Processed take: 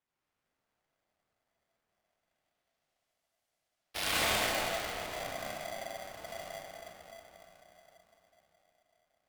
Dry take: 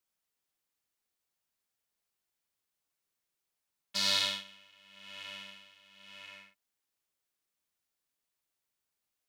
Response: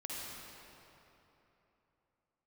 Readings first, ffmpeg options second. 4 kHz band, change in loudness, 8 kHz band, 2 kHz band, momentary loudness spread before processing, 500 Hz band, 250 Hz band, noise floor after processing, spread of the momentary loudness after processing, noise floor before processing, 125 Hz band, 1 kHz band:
-3.5 dB, -3.0 dB, +3.5 dB, +6.0 dB, 22 LU, +13.5 dB, +7.0 dB, under -85 dBFS, 21 LU, under -85 dBFS, +9.5 dB, +10.0 dB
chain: -filter_complex "[0:a]acrusher=samples=10:mix=1:aa=0.000001:lfo=1:lforange=16:lforate=0.23,asubboost=boost=5.5:cutoff=120[a];[1:a]atrim=start_sample=2205,asetrate=32193,aresample=44100[b];[a][b]afir=irnorm=-1:irlink=0,aeval=exprs='val(0)*sgn(sin(2*PI*670*n/s))':c=same,volume=-1.5dB"

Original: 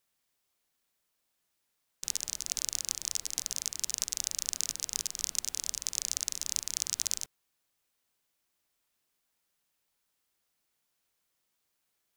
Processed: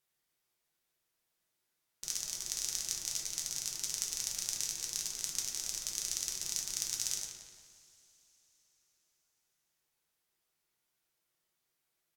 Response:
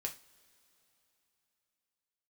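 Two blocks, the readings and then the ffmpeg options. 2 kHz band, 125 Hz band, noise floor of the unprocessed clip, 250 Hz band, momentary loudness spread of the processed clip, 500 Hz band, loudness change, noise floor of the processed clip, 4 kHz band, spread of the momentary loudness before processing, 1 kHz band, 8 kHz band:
-1.5 dB, -0.5 dB, -80 dBFS, -1.5 dB, 3 LU, -1.0 dB, -2.5 dB, -83 dBFS, -2.5 dB, 2 LU, -2.0 dB, -2.5 dB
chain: -filter_complex "[0:a]asplit=2[a][b];[b]adelay=176,lowpass=f=3.7k:p=1,volume=-7dB,asplit=2[c][d];[d]adelay=176,lowpass=f=3.7k:p=1,volume=0.52,asplit=2[e][f];[f]adelay=176,lowpass=f=3.7k:p=1,volume=0.52,asplit=2[g][h];[h]adelay=176,lowpass=f=3.7k:p=1,volume=0.52,asplit=2[i][j];[j]adelay=176,lowpass=f=3.7k:p=1,volume=0.52,asplit=2[k][l];[l]adelay=176,lowpass=f=3.7k:p=1,volume=0.52[m];[a][c][e][g][i][k][m]amix=inputs=7:normalize=0[n];[1:a]atrim=start_sample=2205,asetrate=34839,aresample=44100[o];[n][o]afir=irnorm=-1:irlink=0,volume=-3.5dB"

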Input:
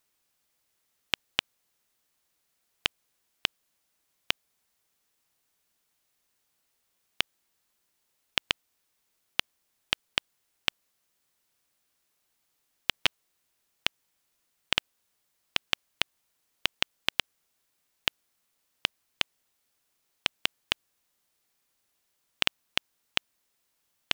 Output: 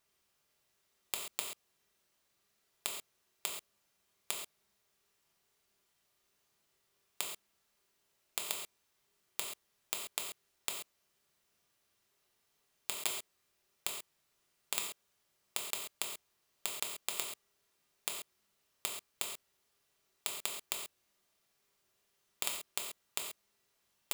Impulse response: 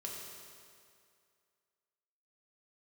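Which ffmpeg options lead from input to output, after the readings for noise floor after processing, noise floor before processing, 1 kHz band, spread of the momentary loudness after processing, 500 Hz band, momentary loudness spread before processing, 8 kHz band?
-78 dBFS, -76 dBFS, -7.5 dB, 11 LU, -6.0 dB, 3 LU, +6.5 dB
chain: -filter_complex "[0:a]highshelf=f=6.9k:g=-5.5,aeval=exprs='(mod(5.01*val(0)+1,2)-1)/5.01':c=same[a];[1:a]atrim=start_sample=2205,atrim=end_sample=6174[b];[a][b]afir=irnorm=-1:irlink=0,volume=3.5dB"

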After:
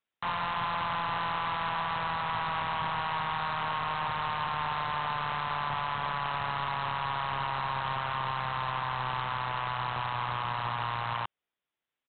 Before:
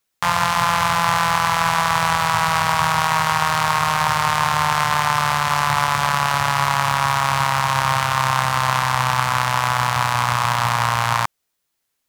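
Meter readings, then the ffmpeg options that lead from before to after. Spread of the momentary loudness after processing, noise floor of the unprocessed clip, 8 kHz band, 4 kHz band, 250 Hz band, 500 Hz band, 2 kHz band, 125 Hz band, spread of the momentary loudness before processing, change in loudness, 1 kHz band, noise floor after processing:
1 LU, -75 dBFS, under -40 dB, -14.0 dB, -14.0 dB, -12.5 dB, -14.5 dB, -15.0 dB, 1 LU, -13.5 dB, -13.0 dB, under -85 dBFS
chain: -af "lowshelf=f=110:g=-9,aresample=8000,volume=17.5dB,asoftclip=hard,volume=-17.5dB,aresample=44100,volume=-9dB"

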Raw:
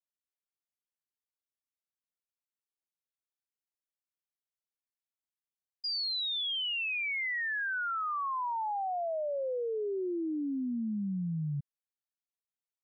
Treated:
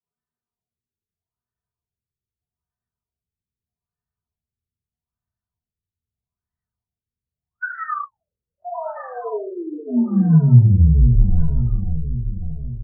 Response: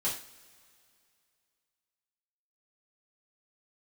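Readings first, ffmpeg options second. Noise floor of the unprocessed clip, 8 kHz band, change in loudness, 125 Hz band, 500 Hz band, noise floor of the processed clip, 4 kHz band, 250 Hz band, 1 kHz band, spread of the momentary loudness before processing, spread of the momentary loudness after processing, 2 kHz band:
under -85 dBFS, n/a, +15.0 dB, +25.5 dB, +3.5 dB, under -85 dBFS, under -40 dB, +14.0 dB, +2.5 dB, 4 LU, 18 LU, -1.5 dB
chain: -filter_complex "[0:a]highpass=f=55:w=0.5412,highpass=f=55:w=1.3066,equalizer=f=380:w=5.8:g=14,bandreject=f=60:t=h:w=6,bandreject=f=120:t=h:w=6,bandreject=f=180:t=h:w=6,bandreject=f=240:t=h:w=6,bandreject=f=300:t=h:w=6,bandreject=f=360:t=h:w=6,bandreject=f=420:t=h:w=6,bandreject=f=480:t=h:w=6,bandreject=f=540:t=h:w=6,aecho=1:1:3.6:0.97,asubboost=boost=10.5:cutoff=160,acrossover=split=270|810|2000[a][b][c][d];[a]acontrast=89[e];[e][b][c][d]amix=inputs=4:normalize=0,afreqshift=-150,aecho=1:1:540|1080|1620|2160|2700|3240|3780:0.422|0.245|0.142|0.0823|0.0477|0.0277|0.0161[f];[1:a]atrim=start_sample=2205,asetrate=40131,aresample=44100[g];[f][g]afir=irnorm=-1:irlink=0,afftfilt=real='re*lt(b*sr/1024,460*pow(2000/460,0.5+0.5*sin(2*PI*0.8*pts/sr)))':imag='im*lt(b*sr/1024,460*pow(2000/460,0.5+0.5*sin(2*PI*0.8*pts/sr)))':win_size=1024:overlap=0.75,volume=-1.5dB"

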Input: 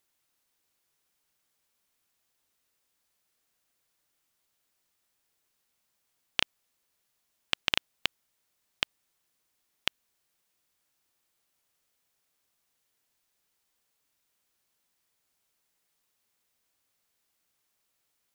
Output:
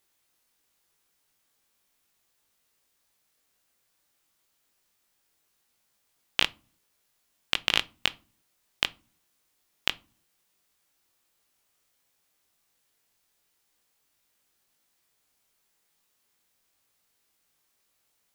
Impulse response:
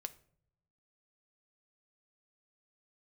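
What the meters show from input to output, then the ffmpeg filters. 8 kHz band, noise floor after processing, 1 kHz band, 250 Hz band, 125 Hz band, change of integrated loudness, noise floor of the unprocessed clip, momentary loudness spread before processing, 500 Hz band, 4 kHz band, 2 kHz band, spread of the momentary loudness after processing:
+4.0 dB, -74 dBFS, +4.0 dB, +4.0 dB, +4.0 dB, +4.0 dB, -78 dBFS, 6 LU, +4.0 dB, +4.0 dB, +4.0 dB, 6 LU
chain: -filter_complex "[0:a]asplit=2[a][b];[1:a]atrim=start_sample=2205,asetrate=83790,aresample=44100,adelay=20[c];[b][c]afir=irnorm=-1:irlink=0,volume=5dB[d];[a][d]amix=inputs=2:normalize=0,volume=2.5dB"

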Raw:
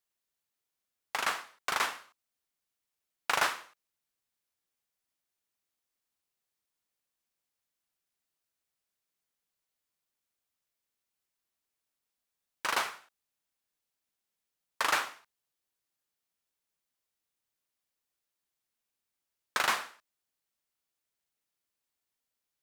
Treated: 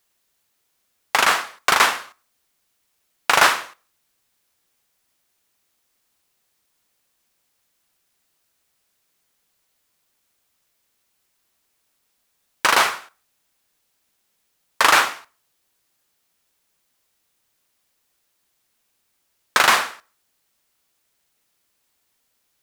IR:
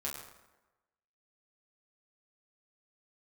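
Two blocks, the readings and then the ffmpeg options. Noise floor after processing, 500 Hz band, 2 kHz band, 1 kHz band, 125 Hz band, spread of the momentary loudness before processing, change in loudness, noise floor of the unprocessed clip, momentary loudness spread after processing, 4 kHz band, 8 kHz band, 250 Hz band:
-71 dBFS, +14.5 dB, +14.5 dB, +14.5 dB, +14.0 dB, 13 LU, +14.0 dB, under -85 dBFS, 12 LU, +14.5 dB, +14.5 dB, +14.5 dB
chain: -filter_complex "[0:a]asplit=2[a][b];[1:a]atrim=start_sample=2205,afade=t=out:st=0.25:d=0.01,atrim=end_sample=11466[c];[b][c]afir=irnorm=-1:irlink=0,volume=-22dB[d];[a][d]amix=inputs=2:normalize=0,alimiter=level_in=17dB:limit=-1dB:release=50:level=0:latency=1,volume=-1dB"

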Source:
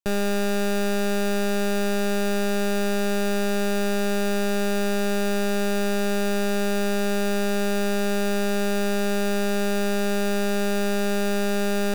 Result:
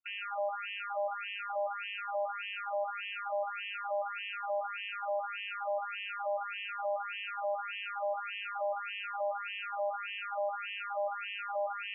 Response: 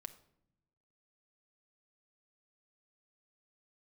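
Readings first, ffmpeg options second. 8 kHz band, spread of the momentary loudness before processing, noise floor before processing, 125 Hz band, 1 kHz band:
under -40 dB, 0 LU, -22 dBFS, n/a, -4.0 dB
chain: -af "asuperstop=centerf=1700:order=4:qfactor=4.4,afftfilt=real='re*between(b*sr/1024,770*pow(2400/770,0.5+0.5*sin(2*PI*1.7*pts/sr))/1.41,770*pow(2400/770,0.5+0.5*sin(2*PI*1.7*pts/sr))*1.41)':imag='im*between(b*sr/1024,770*pow(2400/770,0.5+0.5*sin(2*PI*1.7*pts/sr))/1.41,770*pow(2400/770,0.5+0.5*sin(2*PI*1.7*pts/sr))*1.41)':win_size=1024:overlap=0.75"

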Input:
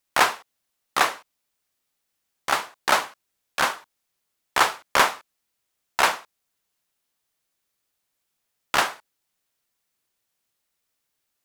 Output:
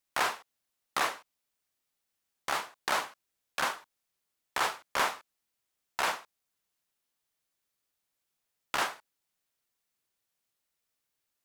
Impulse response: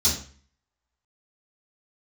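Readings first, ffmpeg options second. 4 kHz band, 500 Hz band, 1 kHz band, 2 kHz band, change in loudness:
-9.0 dB, -9.0 dB, -9.5 dB, -9.5 dB, -9.5 dB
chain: -af "alimiter=limit=-11.5dB:level=0:latency=1:release=32,volume=-5.5dB"

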